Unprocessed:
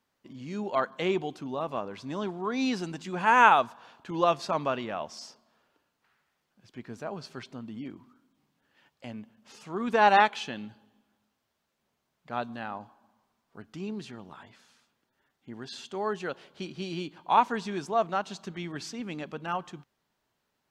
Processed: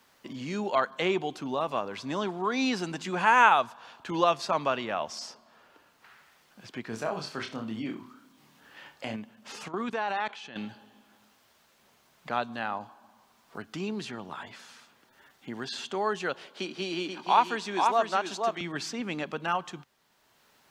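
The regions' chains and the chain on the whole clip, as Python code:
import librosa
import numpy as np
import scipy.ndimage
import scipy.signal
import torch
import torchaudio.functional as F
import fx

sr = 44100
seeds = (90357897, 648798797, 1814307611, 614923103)

y = fx.chain(x, sr, fx.doubler(ms=27.0, db=-4.0),
    fx.room_flutter(wall_m=10.8, rt60_s=0.28), at=(6.89, 9.16))
y = fx.chain(y, sr, fx.high_shelf(hz=7000.0, db=-7.0),
    fx.level_steps(step_db=17), at=(9.68, 10.56))
y = fx.chain(y, sr, fx.highpass(hz=210.0, slope=24),
    fx.echo_single(ms=483, db=-5.0), at=(16.46, 18.61))
y = fx.low_shelf(y, sr, hz=490.0, db=-7.0)
y = fx.band_squash(y, sr, depth_pct=40)
y = y * librosa.db_to_amplitude(5.0)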